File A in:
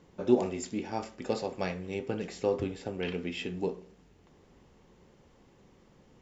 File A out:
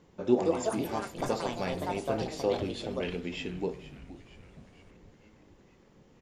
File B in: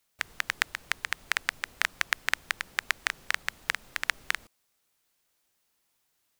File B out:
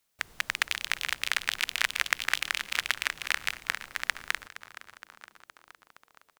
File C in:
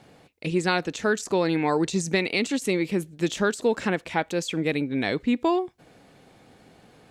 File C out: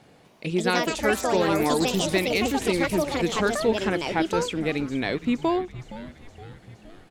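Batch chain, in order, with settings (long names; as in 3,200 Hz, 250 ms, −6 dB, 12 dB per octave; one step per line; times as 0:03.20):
echo with shifted repeats 467 ms, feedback 62%, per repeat −120 Hz, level −15.5 dB
delay with pitch and tempo change per echo 249 ms, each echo +5 semitones, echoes 2
level −1 dB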